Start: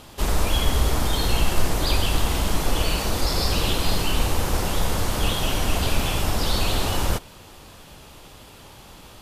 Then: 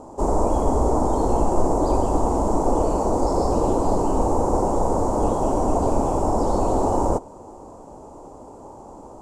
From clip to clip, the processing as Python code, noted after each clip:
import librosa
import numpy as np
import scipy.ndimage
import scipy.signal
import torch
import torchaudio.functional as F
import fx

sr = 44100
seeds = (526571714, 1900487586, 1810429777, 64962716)

y = fx.curve_eq(x, sr, hz=(160.0, 270.0, 940.0, 1700.0, 3500.0, 7400.0, 14000.0), db=(0, 11, 11, -17, -27, 0, -27))
y = y * librosa.db_to_amplitude(-2.0)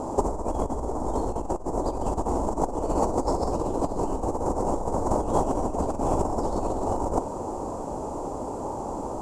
y = fx.over_compress(x, sr, threshold_db=-25.0, ratio=-0.5)
y = y * librosa.db_to_amplitude(1.5)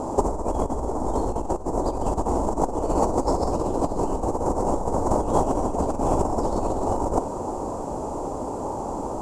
y = x + 10.0 ** (-17.5 / 20.0) * np.pad(x, (int(316 * sr / 1000.0), 0))[:len(x)]
y = y * librosa.db_to_amplitude(2.5)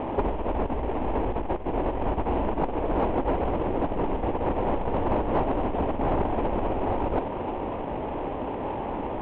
y = fx.cvsd(x, sr, bps=16000)
y = fx.air_absorb(y, sr, metres=260.0)
y = 10.0 ** (-15.5 / 20.0) * np.tanh(y / 10.0 ** (-15.5 / 20.0))